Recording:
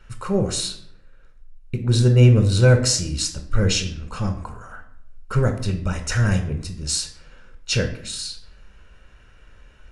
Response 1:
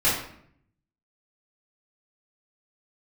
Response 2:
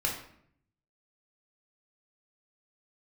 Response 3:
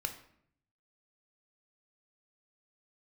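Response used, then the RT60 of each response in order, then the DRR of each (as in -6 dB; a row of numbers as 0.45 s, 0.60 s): 3; 0.65 s, 0.65 s, 0.65 s; -12.5 dB, -2.5 dB, 4.5 dB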